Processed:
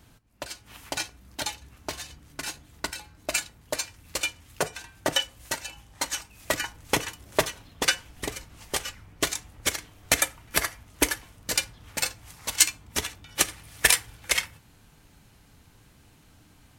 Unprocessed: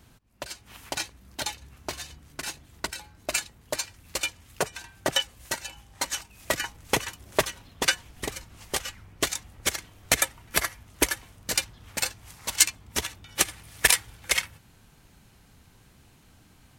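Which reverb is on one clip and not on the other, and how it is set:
feedback delay network reverb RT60 0.35 s, low-frequency decay 0.85×, high-frequency decay 0.7×, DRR 12.5 dB

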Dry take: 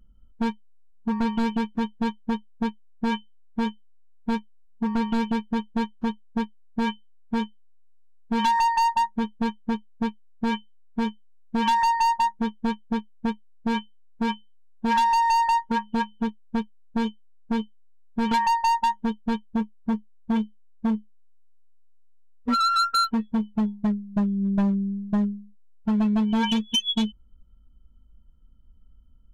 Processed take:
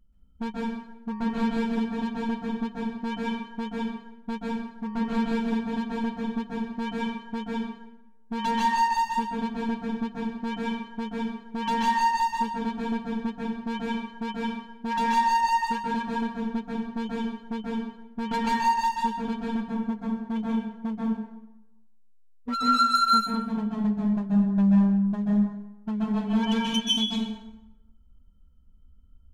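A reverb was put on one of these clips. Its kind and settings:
dense smooth reverb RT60 0.94 s, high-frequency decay 0.7×, pre-delay 120 ms, DRR −4 dB
level −7 dB

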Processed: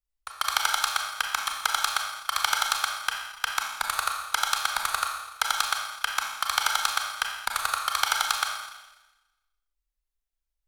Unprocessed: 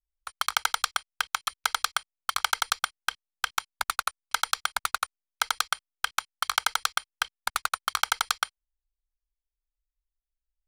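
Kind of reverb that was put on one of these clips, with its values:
four-comb reverb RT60 1.1 s, combs from 28 ms, DRR 1.5 dB

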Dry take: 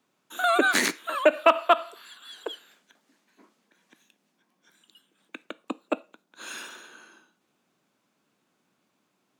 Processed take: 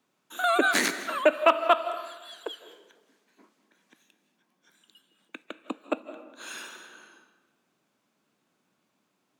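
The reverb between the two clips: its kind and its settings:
comb and all-pass reverb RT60 1.2 s, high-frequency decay 0.55×, pre-delay 120 ms, DRR 12 dB
level −1.5 dB

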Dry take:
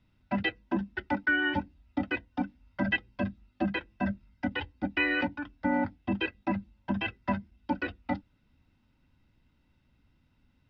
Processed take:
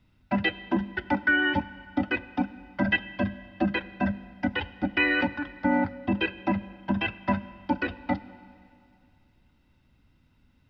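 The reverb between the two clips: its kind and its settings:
four-comb reverb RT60 2.4 s, combs from 32 ms, DRR 15.5 dB
level +4 dB

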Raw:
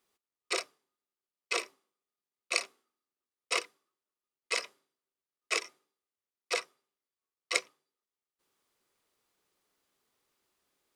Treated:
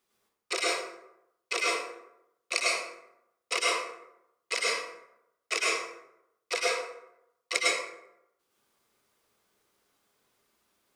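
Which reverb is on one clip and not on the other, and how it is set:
dense smooth reverb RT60 0.83 s, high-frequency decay 0.55×, pre-delay 90 ms, DRR −5.5 dB

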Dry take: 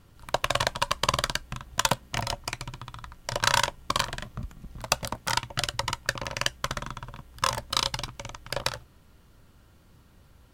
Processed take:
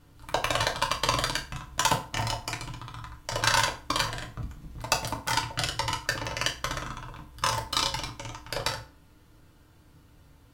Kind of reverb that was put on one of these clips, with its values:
feedback delay network reverb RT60 0.38 s, low-frequency decay 1.05×, high-frequency decay 0.8×, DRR −0.5 dB
level −3 dB

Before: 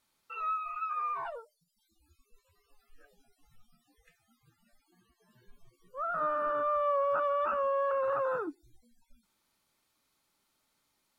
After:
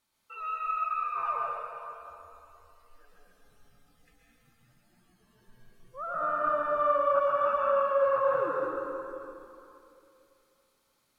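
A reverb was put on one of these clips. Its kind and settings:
dense smooth reverb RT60 2.8 s, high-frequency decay 0.8×, pre-delay 105 ms, DRR −4.5 dB
level −2.5 dB

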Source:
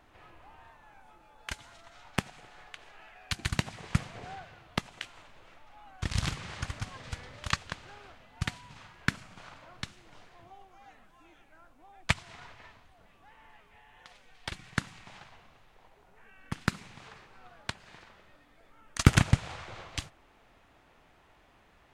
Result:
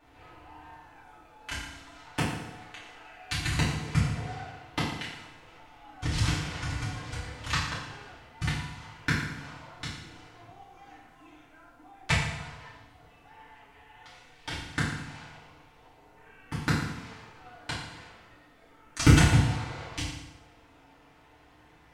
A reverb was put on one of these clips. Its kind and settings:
feedback delay network reverb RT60 0.92 s, low-frequency decay 1.1×, high-frequency decay 0.9×, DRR −9.5 dB
level −6 dB

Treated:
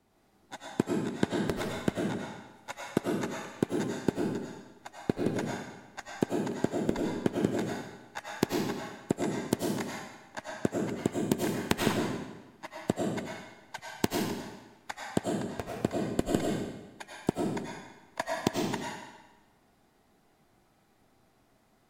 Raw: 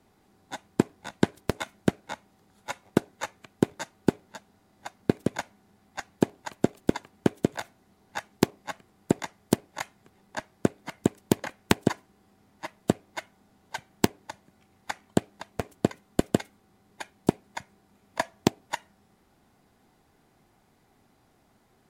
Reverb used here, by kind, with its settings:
comb and all-pass reverb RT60 1.1 s, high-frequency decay 0.95×, pre-delay 60 ms, DRR −2.5 dB
level −6 dB

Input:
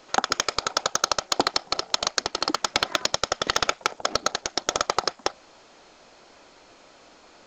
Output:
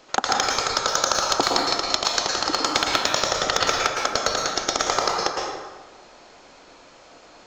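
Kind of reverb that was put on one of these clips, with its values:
dense smooth reverb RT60 1.3 s, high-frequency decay 0.6×, pre-delay 100 ms, DRR −1.5 dB

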